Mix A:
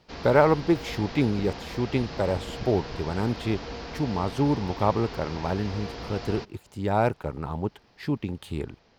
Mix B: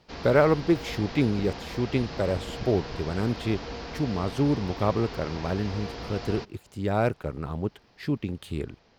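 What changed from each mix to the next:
speech: add peaking EQ 880 Hz -9 dB 0.37 oct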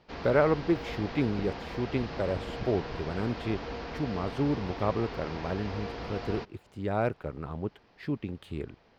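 speech -3.5 dB; master: add tone controls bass -2 dB, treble -10 dB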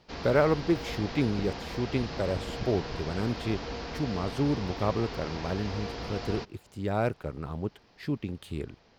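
master: add tone controls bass +2 dB, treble +10 dB

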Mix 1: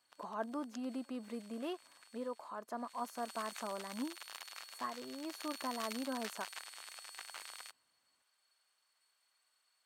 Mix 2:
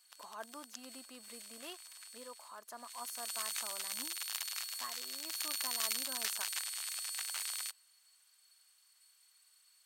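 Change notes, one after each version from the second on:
speech -5.5 dB; master: add tilt EQ +4.5 dB/octave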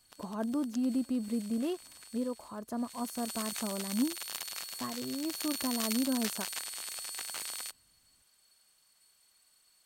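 master: remove high-pass 1.1 kHz 12 dB/octave

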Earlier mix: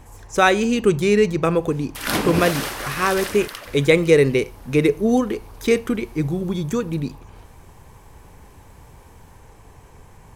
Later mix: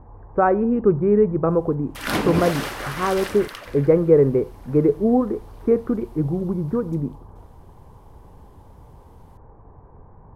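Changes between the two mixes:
speech: add low-pass 1.2 kHz 24 dB/octave; master: add treble shelf 4.4 kHz -8 dB

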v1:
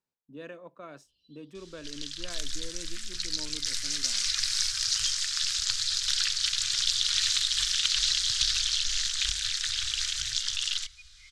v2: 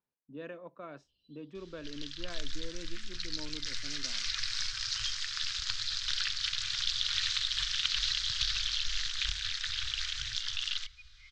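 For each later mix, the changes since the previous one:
master: add distance through air 170 m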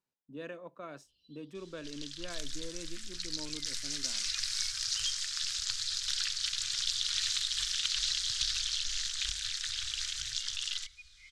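first sound -6.0 dB; master: remove distance through air 170 m

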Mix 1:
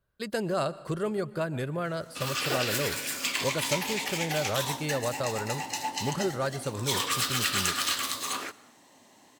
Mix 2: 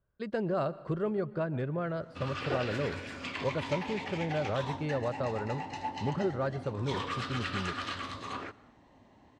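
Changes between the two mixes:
background: remove high-pass 190 Hz 12 dB/octave; master: add tape spacing loss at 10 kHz 33 dB

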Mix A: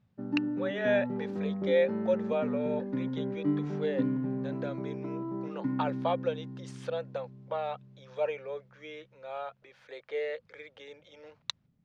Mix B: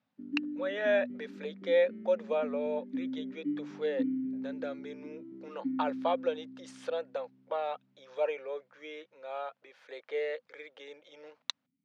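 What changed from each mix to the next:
background: add vowel filter i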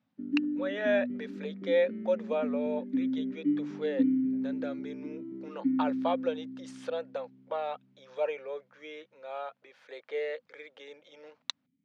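background +6.0 dB

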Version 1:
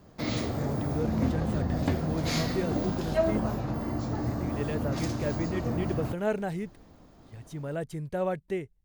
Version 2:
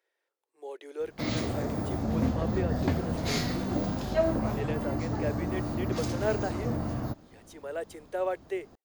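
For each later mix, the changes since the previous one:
speech: add steep high-pass 350 Hz 48 dB/octave; background: entry +1.00 s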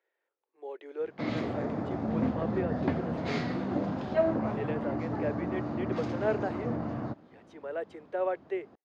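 master: add band-pass 140–2500 Hz

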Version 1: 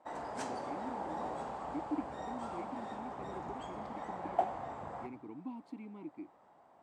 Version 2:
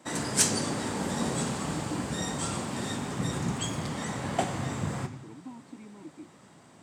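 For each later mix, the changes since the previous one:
background: remove band-pass filter 770 Hz, Q 2.6; master: add high-pass 110 Hz 24 dB/octave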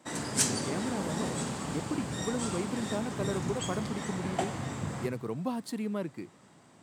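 speech: remove vowel filter u; background -3.5 dB

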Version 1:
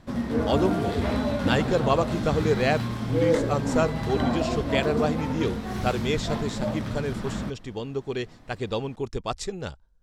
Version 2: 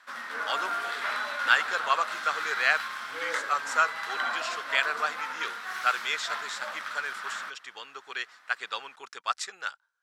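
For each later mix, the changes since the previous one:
master: add resonant high-pass 1.4 kHz, resonance Q 3.2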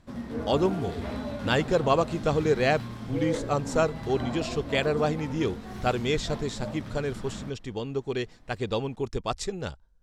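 background -8.0 dB; master: remove resonant high-pass 1.4 kHz, resonance Q 3.2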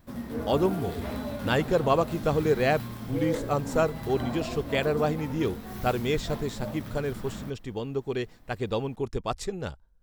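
speech: add treble shelf 4.4 kHz -9 dB; master: remove low-pass 6.9 kHz 12 dB/octave

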